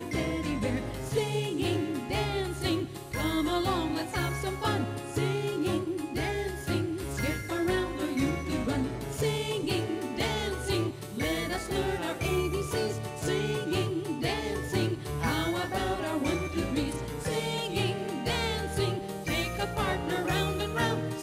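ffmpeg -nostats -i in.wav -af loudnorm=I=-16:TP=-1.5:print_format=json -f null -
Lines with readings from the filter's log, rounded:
"input_i" : "-30.6",
"input_tp" : "-14.8",
"input_lra" : "0.7",
"input_thresh" : "-40.6",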